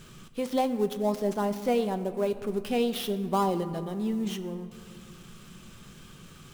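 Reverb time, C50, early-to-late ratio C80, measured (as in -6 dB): 2.1 s, 13.0 dB, 14.0 dB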